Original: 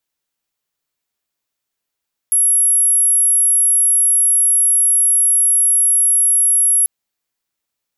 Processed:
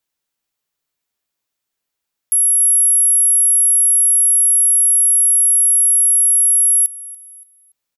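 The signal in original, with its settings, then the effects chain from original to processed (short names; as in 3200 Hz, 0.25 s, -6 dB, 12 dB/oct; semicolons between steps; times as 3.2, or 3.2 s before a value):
tone sine 11200 Hz -10 dBFS 4.54 s
feedback echo 0.286 s, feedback 30%, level -18 dB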